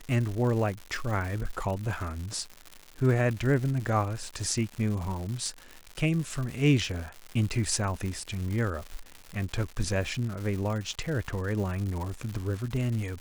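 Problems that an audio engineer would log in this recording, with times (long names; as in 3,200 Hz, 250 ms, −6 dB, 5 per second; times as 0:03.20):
surface crackle 220 per second −34 dBFS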